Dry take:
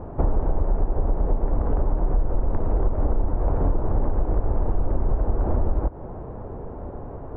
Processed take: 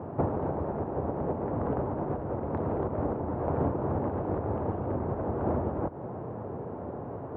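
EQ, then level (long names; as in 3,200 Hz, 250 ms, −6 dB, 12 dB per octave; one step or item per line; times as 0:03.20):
high-pass filter 100 Hz 24 dB per octave
0.0 dB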